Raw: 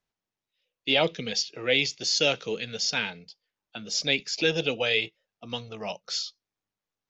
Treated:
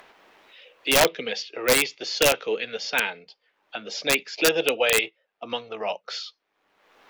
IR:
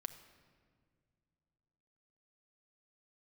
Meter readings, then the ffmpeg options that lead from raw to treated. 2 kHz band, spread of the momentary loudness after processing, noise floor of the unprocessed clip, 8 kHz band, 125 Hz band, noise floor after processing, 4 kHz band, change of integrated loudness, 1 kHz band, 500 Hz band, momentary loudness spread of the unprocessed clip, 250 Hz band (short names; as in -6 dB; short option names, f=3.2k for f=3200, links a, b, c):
+4.0 dB, 14 LU, under -85 dBFS, n/a, -4.0 dB, -76 dBFS, 0.0 dB, +3.0 dB, +7.5 dB, +5.0 dB, 13 LU, +1.0 dB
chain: -filter_complex "[0:a]acrossover=split=310 3200:gain=0.0794 1 0.1[a][b][c];[a][b][c]amix=inputs=3:normalize=0,acompressor=mode=upward:threshold=-36dB:ratio=2.5,aeval=exprs='(mod(6.68*val(0)+1,2)-1)/6.68':c=same,volume=7dB"